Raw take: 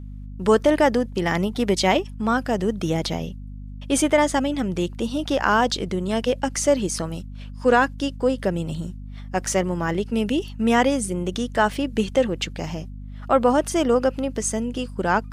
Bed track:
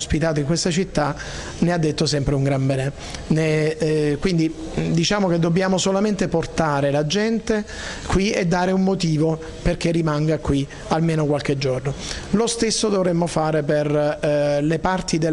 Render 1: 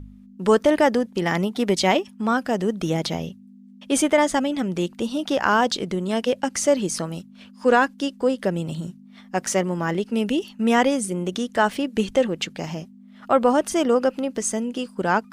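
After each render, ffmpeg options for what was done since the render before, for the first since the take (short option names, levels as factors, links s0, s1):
-af "bandreject=f=50:t=h:w=4,bandreject=f=100:t=h:w=4,bandreject=f=150:t=h:w=4"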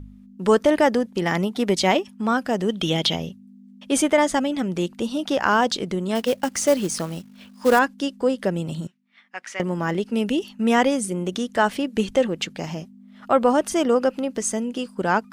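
-filter_complex "[0:a]asettb=1/sr,asplit=3[s0][s1][s2];[s0]atrim=end=2.694[s3];[s1]atrim=start=2.69:end=3.16,asetpts=PTS-STARTPTS,afade=t=in:d=0.004:c=qsin,afade=t=out:st=0.466:d=0.004:c=qsin,equalizer=f=3200:w=2.4:g=15[s4];[s2]atrim=start=3.156[s5];[s3][s4]acrossfade=d=0.004:c1=hsin:c2=qsin[s6];[s6][s5]acrossfade=d=0.004:c1=qsin:c2=hsin,asettb=1/sr,asplit=3[s7][s8][s9];[s7]atrim=end=6.154[s10];[s8]atrim=start=6.15:end=7.79,asetpts=PTS-STARTPTS,afade=t=in:d=0.004:c=qsin,afade=t=out:st=1.636:d=0.004:c=qsin,acrusher=bits=4:mode=log:mix=0:aa=0.000001[s11];[s9]atrim=start=7.786[s12];[s10][s11]acrossfade=d=0.004:c1=hsin:c2=qsin[s13];[s13][s12]acrossfade=d=0.004:c1=qsin:c2=hsin,asettb=1/sr,asplit=3[s14][s15][s16];[s14]atrim=end=8.874[s17];[s15]atrim=start=8.87:end=9.6,asetpts=PTS-STARTPTS,afade=t=in:d=0.004:c=qsin,afade=t=out:st=0.726:d=0.004:c=qsin,bandpass=f=2100:t=q:w=1.7[s18];[s16]atrim=start=9.596[s19];[s17][s18]acrossfade=d=0.004:c1=hsin:c2=qsin[s20];[s20][s19]acrossfade=d=0.004:c1=qsin:c2=hsin"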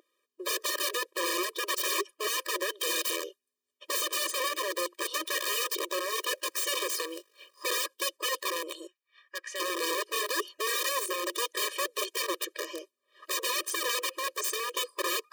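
-af "aeval=exprs='(mod(11.9*val(0)+1,2)-1)/11.9':c=same,afftfilt=real='re*eq(mod(floor(b*sr/1024/320),2),1)':imag='im*eq(mod(floor(b*sr/1024/320),2),1)':win_size=1024:overlap=0.75"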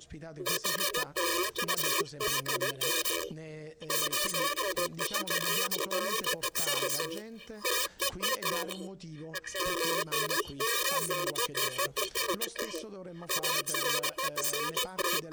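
-filter_complex "[1:a]volume=0.0531[s0];[0:a][s0]amix=inputs=2:normalize=0"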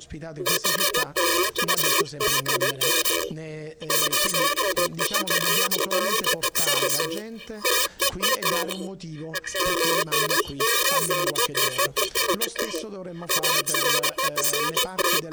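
-af "volume=2.66"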